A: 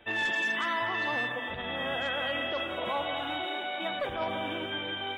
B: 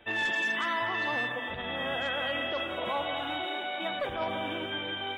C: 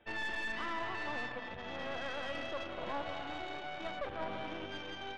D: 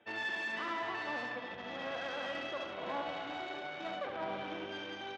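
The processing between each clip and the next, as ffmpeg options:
-af anull
-af "aeval=exprs='0.0841*(cos(1*acos(clip(val(0)/0.0841,-1,1)))-cos(1*PI/2))+0.0188*(cos(4*acos(clip(val(0)/0.0841,-1,1)))-cos(4*PI/2))':c=same,aemphasis=mode=reproduction:type=75kf,volume=-7.5dB"
-af "highpass=160,lowpass=7.5k,aecho=1:1:71:0.501"

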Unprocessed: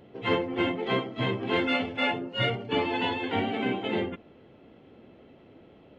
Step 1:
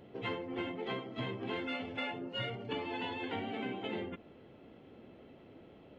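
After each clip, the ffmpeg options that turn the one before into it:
-af "acompressor=threshold=-33dB:ratio=6,volume=-2.5dB"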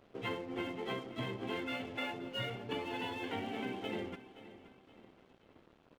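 -af "aeval=exprs='sgn(val(0))*max(abs(val(0))-0.00168,0)':c=same,aecho=1:1:523|1046|1569:0.168|0.0655|0.0255"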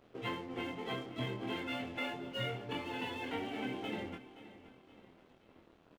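-filter_complex "[0:a]asplit=2[a][b];[b]adelay=24,volume=-4dB[c];[a][c]amix=inputs=2:normalize=0,volume=-1dB"

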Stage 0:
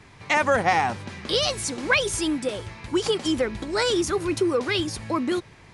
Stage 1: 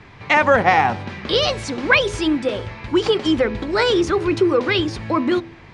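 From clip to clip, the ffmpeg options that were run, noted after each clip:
-af "lowpass=3.7k,bandreject=f=83.61:t=h:w=4,bandreject=f=167.22:t=h:w=4,bandreject=f=250.83:t=h:w=4,bandreject=f=334.44:t=h:w=4,bandreject=f=418.05:t=h:w=4,bandreject=f=501.66:t=h:w=4,bandreject=f=585.27:t=h:w=4,bandreject=f=668.88:t=h:w=4,bandreject=f=752.49:t=h:w=4,bandreject=f=836.1:t=h:w=4,bandreject=f=919.71:t=h:w=4,bandreject=f=1.00332k:t=h:w=4,volume=6.5dB"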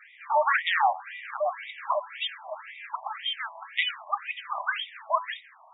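-af "aeval=exprs='(mod(2.24*val(0)+1,2)-1)/2.24':c=same,afftfilt=real='re*between(b*sr/1024,810*pow(2700/810,0.5+0.5*sin(2*PI*1.9*pts/sr))/1.41,810*pow(2700/810,0.5+0.5*sin(2*PI*1.9*pts/sr))*1.41)':imag='im*between(b*sr/1024,810*pow(2700/810,0.5+0.5*sin(2*PI*1.9*pts/sr))/1.41,810*pow(2700/810,0.5+0.5*sin(2*PI*1.9*pts/sr))*1.41)':win_size=1024:overlap=0.75,volume=-1.5dB"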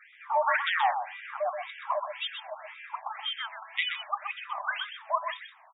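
-af "aecho=1:1:126:0.422,volume=-3dB"

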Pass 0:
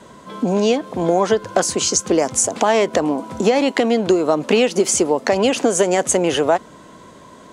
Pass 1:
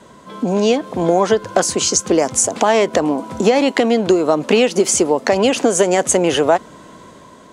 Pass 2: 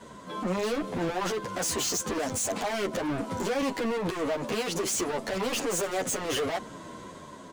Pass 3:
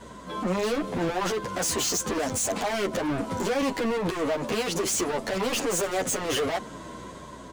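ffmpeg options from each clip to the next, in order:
-af "dynaudnorm=f=230:g=5:m=11.5dB,volume=-1dB"
-filter_complex "[0:a]alimiter=limit=-9dB:level=0:latency=1:release=21,asoftclip=type=hard:threshold=-24.5dB,asplit=2[a][b];[b]adelay=9.8,afreqshift=-2.9[c];[a][c]amix=inputs=2:normalize=1"
-af "aeval=exprs='val(0)+0.00178*(sin(2*PI*60*n/s)+sin(2*PI*2*60*n/s)/2+sin(2*PI*3*60*n/s)/3+sin(2*PI*4*60*n/s)/4+sin(2*PI*5*60*n/s)/5)':c=same,volume=2.5dB"

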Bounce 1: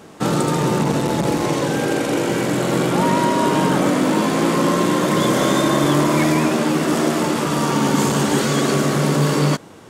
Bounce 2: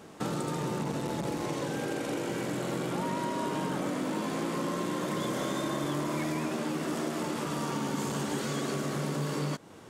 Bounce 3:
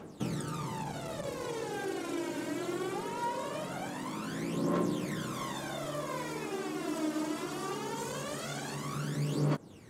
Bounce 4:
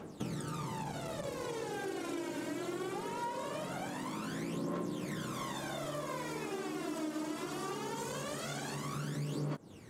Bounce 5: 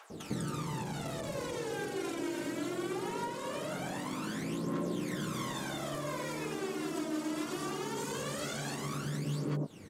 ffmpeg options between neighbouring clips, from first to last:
-af "acompressor=threshold=-25dB:ratio=2.5,volume=-7.5dB"
-af "aphaser=in_gain=1:out_gain=1:delay=3.3:decay=0.69:speed=0.21:type=triangular,volume=-6dB"
-af "acompressor=threshold=-36dB:ratio=3"
-filter_complex "[0:a]acrossover=split=830[a][b];[a]adelay=100[c];[c][b]amix=inputs=2:normalize=0,volume=3dB"

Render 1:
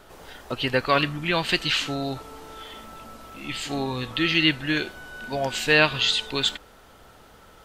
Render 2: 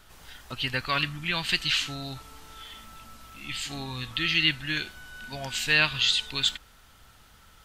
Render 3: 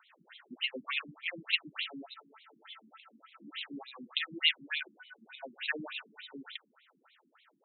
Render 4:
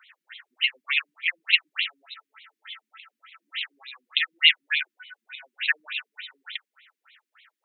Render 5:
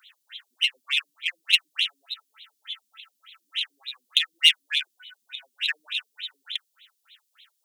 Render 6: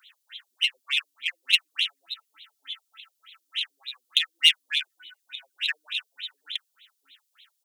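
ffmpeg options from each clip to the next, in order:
-af "equalizer=f=470:t=o:w=2.3:g=-14.5"
-af "afftfilt=real='re*between(b*sr/1024,240*pow(3000/240,0.5+0.5*sin(2*PI*3.4*pts/sr))/1.41,240*pow(3000/240,0.5+0.5*sin(2*PI*3.4*pts/sr))*1.41)':imag='im*between(b*sr/1024,240*pow(3000/240,0.5+0.5*sin(2*PI*3.4*pts/sr))/1.41,240*pow(3000/240,0.5+0.5*sin(2*PI*3.4*pts/sr))*1.41)':win_size=1024:overlap=0.75,volume=-1.5dB"
-af "highpass=f=1.9k:t=q:w=1.9,volume=6.5dB"
-af "aexciter=amount=3.9:drive=8.8:freq=3.1k,volume=-6dB"
-filter_complex "[0:a]acrossover=split=350[a][b];[a]adelay=690[c];[c][b]amix=inputs=2:normalize=0,volume=-1dB"

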